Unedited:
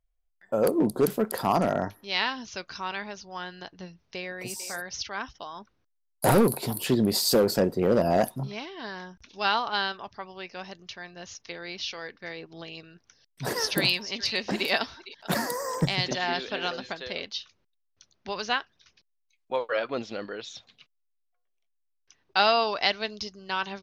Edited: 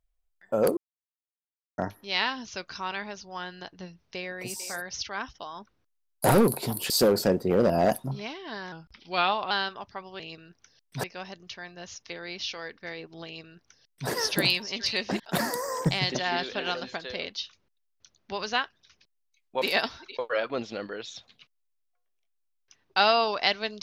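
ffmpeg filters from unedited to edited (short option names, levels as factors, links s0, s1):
-filter_complex "[0:a]asplit=11[s0][s1][s2][s3][s4][s5][s6][s7][s8][s9][s10];[s0]atrim=end=0.77,asetpts=PTS-STARTPTS,afade=t=out:st=0.766:d=0.004:c=hsin[s11];[s1]atrim=start=0.77:end=1.78,asetpts=PTS-STARTPTS,volume=0[s12];[s2]atrim=start=1.78:end=6.902,asetpts=PTS-STARTPTS,afade=t=in:d=0.004:c=hsin[s13];[s3]atrim=start=7.218:end=9.044[s14];[s4]atrim=start=9.04:end=9.74,asetpts=PTS-STARTPTS,asetrate=39249,aresample=44100,atrim=end_sample=34685,asetpts=PTS-STARTPTS[s15];[s5]atrim=start=9.736:end=10.432[s16];[s6]atrim=start=12.648:end=13.492[s17];[s7]atrim=start=10.428:end=14.592[s18];[s8]atrim=start=15.158:end=19.582[s19];[s9]atrim=start=14.588:end=15.162[s20];[s10]atrim=start=19.578[s21];[s11][s12][s13]concat=n=3:v=0:a=1[s22];[s22][s14]acrossfade=d=0.004:c1=hsin:c2=hsin[s23];[s23][s15]acrossfade=d=0.004:c1=hsin:c2=hsin[s24];[s24][s16]acrossfade=d=0.004:c1=hsin:c2=hsin[s25];[s25][s17]acrossfade=d=0.004:c1=hsin:c2=hsin[s26];[s26][s18]acrossfade=d=0.004:c1=hsin:c2=hsin[s27];[s27][s19]acrossfade=d=0.004:c1=hsin:c2=hsin[s28];[s28][s20]acrossfade=d=0.004:c1=hsin:c2=hsin[s29];[s29][s21]acrossfade=d=0.004:c1=hsin:c2=hsin"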